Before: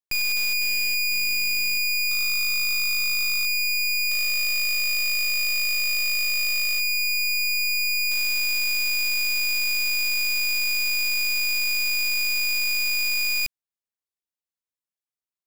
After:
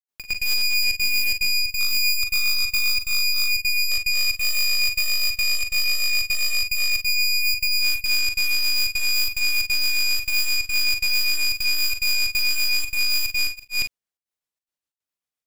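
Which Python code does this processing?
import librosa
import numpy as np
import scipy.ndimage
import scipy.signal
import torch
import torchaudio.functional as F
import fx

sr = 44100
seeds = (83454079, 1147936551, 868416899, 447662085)

y = fx.granulator(x, sr, seeds[0], grain_ms=244.0, per_s=7.6, spray_ms=427.0, spread_st=0)
y = fx.step_gate(y, sr, bpm=181, pattern='.xxx.xxxxxx.xxxx', floor_db=-24.0, edge_ms=4.5)
y = fx.room_early_taps(y, sr, ms=(41, 52), db=(-10.0, -13.0))
y = y * librosa.db_to_amplitude(4.5)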